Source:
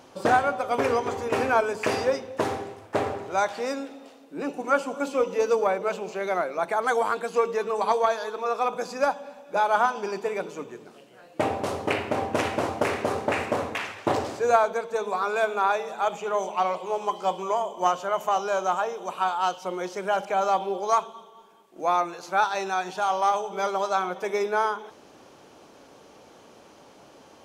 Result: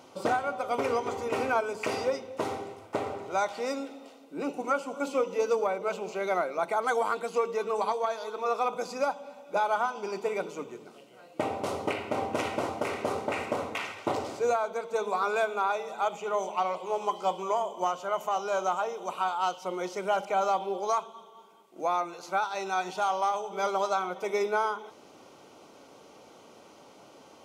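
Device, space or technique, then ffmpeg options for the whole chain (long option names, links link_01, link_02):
PA system with an anti-feedback notch: -af "highpass=frequency=110:poles=1,asuperstop=centerf=1700:order=8:qfactor=7.6,alimiter=limit=-15.5dB:level=0:latency=1:release=431,volume=-1.5dB"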